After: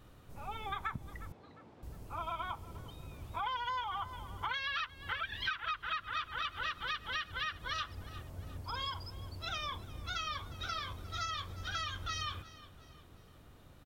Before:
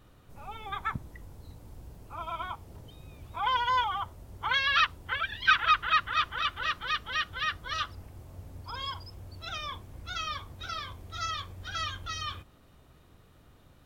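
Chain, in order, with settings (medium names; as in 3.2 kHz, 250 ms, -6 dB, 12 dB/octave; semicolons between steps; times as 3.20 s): on a send: feedback delay 355 ms, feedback 44%, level -21 dB; on the sum: compression 10:1, threshold -34 dBFS, peak gain reduction 17 dB; 1.32–1.83 s: band-pass 230–3000 Hz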